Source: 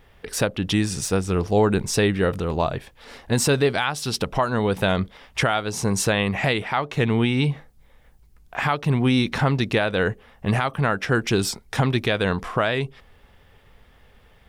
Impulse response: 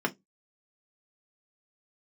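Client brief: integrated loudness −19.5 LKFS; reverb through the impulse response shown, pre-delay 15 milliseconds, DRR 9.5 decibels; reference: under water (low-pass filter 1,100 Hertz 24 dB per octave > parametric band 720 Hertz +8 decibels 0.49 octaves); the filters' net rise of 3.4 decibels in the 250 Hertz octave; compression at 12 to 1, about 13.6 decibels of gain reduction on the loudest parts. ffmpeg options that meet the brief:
-filter_complex "[0:a]equalizer=frequency=250:width_type=o:gain=4,acompressor=threshold=-27dB:ratio=12,asplit=2[link_01][link_02];[1:a]atrim=start_sample=2205,adelay=15[link_03];[link_02][link_03]afir=irnorm=-1:irlink=0,volume=-18.5dB[link_04];[link_01][link_04]amix=inputs=2:normalize=0,lowpass=frequency=1100:width=0.5412,lowpass=frequency=1100:width=1.3066,equalizer=frequency=720:width_type=o:width=0.49:gain=8,volume=12.5dB"

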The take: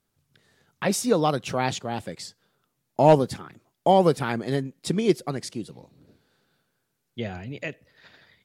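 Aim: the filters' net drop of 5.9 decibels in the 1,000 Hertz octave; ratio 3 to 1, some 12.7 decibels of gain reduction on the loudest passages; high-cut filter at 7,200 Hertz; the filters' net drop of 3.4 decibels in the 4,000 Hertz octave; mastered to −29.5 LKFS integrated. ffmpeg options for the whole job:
ffmpeg -i in.wav -af "lowpass=7200,equalizer=frequency=1000:width_type=o:gain=-8.5,equalizer=frequency=4000:width_type=o:gain=-3.5,acompressor=threshold=-31dB:ratio=3,volume=6dB" out.wav

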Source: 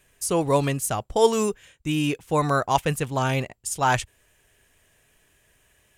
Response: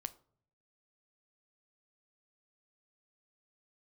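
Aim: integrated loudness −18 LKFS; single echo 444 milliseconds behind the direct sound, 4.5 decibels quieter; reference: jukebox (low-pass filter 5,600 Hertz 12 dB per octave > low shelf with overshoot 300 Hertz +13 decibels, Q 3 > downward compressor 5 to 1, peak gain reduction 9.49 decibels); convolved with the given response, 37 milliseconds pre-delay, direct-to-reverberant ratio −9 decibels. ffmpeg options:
-filter_complex "[0:a]aecho=1:1:444:0.596,asplit=2[link_01][link_02];[1:a]atrim=start_sample=2205,adelay=37[link_03];[link_02][link_03]afir=irnorm=-1:irlink=0,volume=11.5dB[link_04];[link_01][link_04]amix=inputs=2:normalize=0,lowpass=5600,lowshelf=frequency=300:width_type=q:width=3:gain=13,acompressor=threshold=-5dB:ratio=5,volume=-8.5dB"

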